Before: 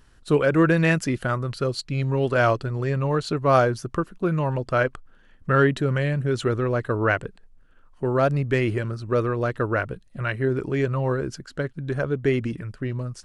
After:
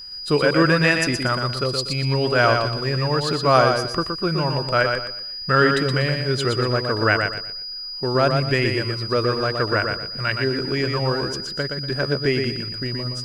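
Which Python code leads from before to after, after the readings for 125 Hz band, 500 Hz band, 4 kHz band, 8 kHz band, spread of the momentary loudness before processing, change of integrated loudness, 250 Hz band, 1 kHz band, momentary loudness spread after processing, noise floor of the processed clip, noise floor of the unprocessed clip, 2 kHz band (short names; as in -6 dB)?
+0.5 dB, +2.0 dB, +16.0 dB, +6.5 dB, 10 LU, +3.0 dB, +1.0 dB, +4.0 dB, 9 LU, -32 dBFS, -54 dBFS, +5.5 dB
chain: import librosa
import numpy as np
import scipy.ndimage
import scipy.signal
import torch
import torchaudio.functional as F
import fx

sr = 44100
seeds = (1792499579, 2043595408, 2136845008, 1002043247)

p1 = x + 10.0 ** (-38.0 / 20.0) * np.sin(2.0 * np.pi * 4900.0 * np.arange(len(x)) / sr)
p2 = fx.backlash(p1, sr, play_db=-33.0)
p3 = p1 + (p2 * librosa.db_to_amplitude(-9.0))
p4 = fx.tilt_shelf(p3, sr, db=-3.5, hz=970.0)
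y = fx.echo_feedback(p4, sr, ms=120, feedback_pct=29, wet_db=-5.0)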